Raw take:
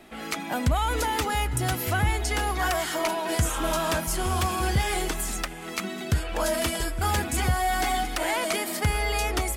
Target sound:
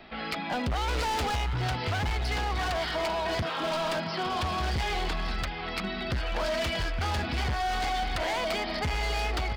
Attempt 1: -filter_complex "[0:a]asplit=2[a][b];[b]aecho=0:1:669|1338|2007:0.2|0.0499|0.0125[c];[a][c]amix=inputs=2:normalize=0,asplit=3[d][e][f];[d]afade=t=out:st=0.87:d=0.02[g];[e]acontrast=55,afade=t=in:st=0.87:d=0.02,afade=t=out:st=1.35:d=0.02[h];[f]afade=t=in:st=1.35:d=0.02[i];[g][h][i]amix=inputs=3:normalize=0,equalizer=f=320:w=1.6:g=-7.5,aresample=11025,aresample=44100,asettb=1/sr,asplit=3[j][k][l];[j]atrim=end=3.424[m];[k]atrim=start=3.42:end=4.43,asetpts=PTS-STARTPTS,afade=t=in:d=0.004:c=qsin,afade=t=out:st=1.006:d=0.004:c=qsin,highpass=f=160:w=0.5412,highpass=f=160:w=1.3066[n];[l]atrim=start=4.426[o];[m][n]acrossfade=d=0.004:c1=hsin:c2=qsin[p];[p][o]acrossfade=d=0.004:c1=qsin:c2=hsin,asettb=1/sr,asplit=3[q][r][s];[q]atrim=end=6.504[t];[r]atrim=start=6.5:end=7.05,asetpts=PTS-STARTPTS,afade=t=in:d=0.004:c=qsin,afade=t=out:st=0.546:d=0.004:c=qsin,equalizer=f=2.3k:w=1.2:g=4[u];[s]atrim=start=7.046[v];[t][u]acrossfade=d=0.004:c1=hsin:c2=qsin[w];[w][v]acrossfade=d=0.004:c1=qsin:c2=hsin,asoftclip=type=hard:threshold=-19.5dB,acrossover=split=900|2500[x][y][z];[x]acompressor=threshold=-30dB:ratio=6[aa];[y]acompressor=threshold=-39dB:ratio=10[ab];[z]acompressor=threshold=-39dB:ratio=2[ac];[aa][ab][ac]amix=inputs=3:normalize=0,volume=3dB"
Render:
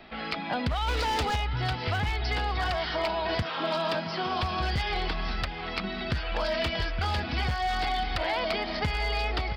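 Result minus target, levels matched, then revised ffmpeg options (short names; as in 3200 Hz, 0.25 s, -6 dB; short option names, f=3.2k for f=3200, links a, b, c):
hard clip: distortion -9 dB
-filter_complex "[0:a]asplit=2[a][b];[b]aecho=0:1:669|1338|2007:0.2|0.0499|0.0125[c];[a][c]amix=inputs=2:normalize=0,asplit=3[d][e][f];[d]afade=t=out:st=0.87:d=0.02[g];[e]acontrast=55,afade=t=in:st=0.87:d=0.02,afade=t=out:st=1.35:d=0.02[h];[f]afade=t=in:st=1.35:d=0.02[i];[g][h][i]amix=inputs=3:normalize=0,equalizer=f=320:w=1.6:g=-7.5,aresample=11025,aresample=44100,asettb=1/sr,asplit=3[j][k][l];[j]atrim=end=3.424[m];[k]atrim=start=3.42:end=4.43,asetpts=PTS-STARTPTS,afade=t=in:d=0.004:c=qsin,afade=t=out:st=1.006:d=0.004:c=qsin,highpass=f=160:w=0.5412,highpass=f=160:w=1.3066[n];[l]atrim=start=4.426[o];[m][n]acrossfade=d=0.004:c1=hsin:c2=qsin[p];[p][o]acrossfade=d=0.004:c1=qsin:c2=hsin,asettb=1/sr,asplit=3[q][r][s];[q]atrim=end=6.504[t];[r]atrim=start=6.5:end=7.05,asetpts=PTS-STARTPTS,afade=t=in:d=0.004:c=qsin,afade=t=out:st=0.546:d=0.004:c=qsin,equalizer=f=2.3k:w=1.2:g=4[u];[s]atrim=start=7.046[v];[t][u]acrossfade=d=0.004:c1=hsin:c2=qsin[w];[w][v]acrossfade=d=0.004:c1=qsin:c2=hsin,asoftclip=type=hard:threshold=-27dB,acrossover=split=900|2500[x][y][z];[x]acompressor=threshold=-30dB:ratio=6[aa];[y]acompressor=threshold=-39dB:ratio=10[ab];[z]acompressor=threshold=-39dB:ratio=2[ac];[aa][ab][ac]amix=inputs=3:normalize=0,volume=3dB"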